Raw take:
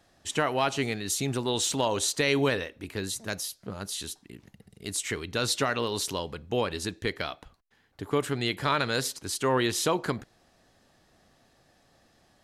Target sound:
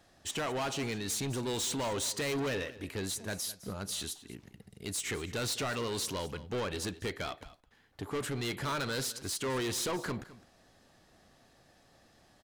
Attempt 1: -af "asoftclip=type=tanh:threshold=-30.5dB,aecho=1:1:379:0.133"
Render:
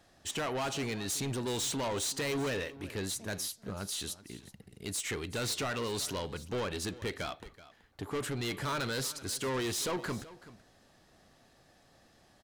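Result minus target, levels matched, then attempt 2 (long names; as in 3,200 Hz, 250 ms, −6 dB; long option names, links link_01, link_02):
echo 169 ms late
-af "asoftclip=type=tanh:threshold=-30.5dB,aecho=1:1:210:0.133"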